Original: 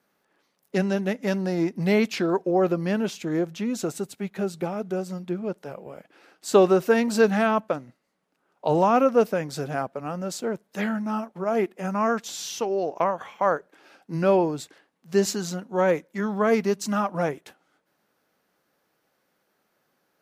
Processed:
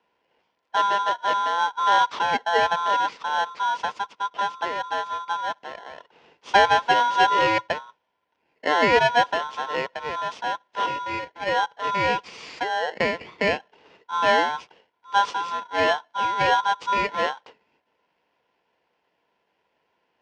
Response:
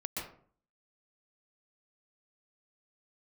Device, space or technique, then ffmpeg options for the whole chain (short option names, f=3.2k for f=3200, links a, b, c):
ring modulator pedal into a guitar cabinet: -filter_complex "[0:a]asettb=1/sr,asplit=3[a][b][c];[a]atrim=end=10.864[d];[b]atrim=start=10.86:end=11.49,asetpts=PTS-STARTPTS,afade=t=in:d=0.004:c=qsin,afade=t=out:st=0.626:d=0.004:c=qsin,highpass=280[e];[c]atrim=start=11.486[f];[d][e]acrossfade=d=0.004:c1=hsin:c2=qsin[g];[g][f]acrossfade=d=0.004:c1=qsin:c2=hsin,aeval=exprs='val(0)*sgn(sin(2*PI*1200*n/s))':c=same,highpass=99,equalizer=f=110:t=q:w=4:g=-9,equalizer=f=470:t=q:w=4:g=7,equalizer=f=1k:t=q:w=4:g=7,equalizer=f=1.6k:t=q:w=4:g=-5,equalizer=f=4k:t=q:w=4:g=-7,lowpass=f=4.4k:w=0.5412,lowpass=f=4.4k:w=1.3066"